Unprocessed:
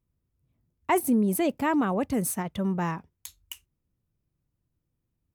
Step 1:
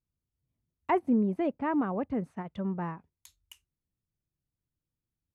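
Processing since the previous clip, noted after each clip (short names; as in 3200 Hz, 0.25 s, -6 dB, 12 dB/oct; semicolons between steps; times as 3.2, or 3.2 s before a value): treble ducked by the level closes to 1700 Hz, closed at -25.5 dBFS; upward expander 1.5:1, over -37 dBFS; gain -2 dB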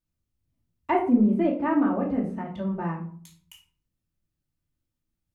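shoebox room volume 440 m³, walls furnished, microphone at 2.6 m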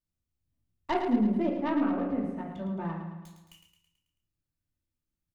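tracing distortion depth 0.14 ms; feedback echo 0.109 s, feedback 53%, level -7.5 dB; gain -6 dB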